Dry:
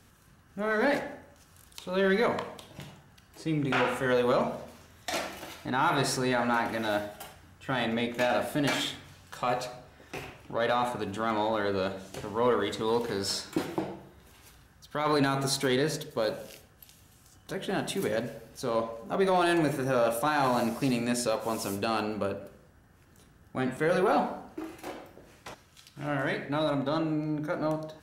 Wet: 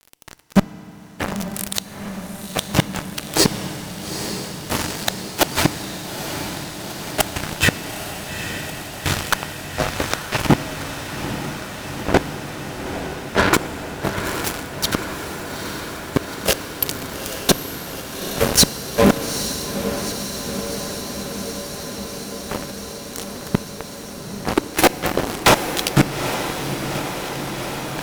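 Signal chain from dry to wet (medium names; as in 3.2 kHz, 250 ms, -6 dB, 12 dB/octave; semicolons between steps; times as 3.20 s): 11.94–13.54 s: low-pass 1.8 kHz 24 dB/octave; in parallel at 0 dB: compressor with a negative ratio -32 dBFS, ratio -0.5; on the sum: inverted gate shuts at -21 dBFS, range -34 dB; fuzz box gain 37 dB, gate -42 dBFS; on a send: echo that smears into a reverb 856 ms, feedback 79%, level -8.5 dB; on the sum: FDN reverb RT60 4 s, high-frequency decay 0.85×, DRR 15 dB; trim +6.5 dB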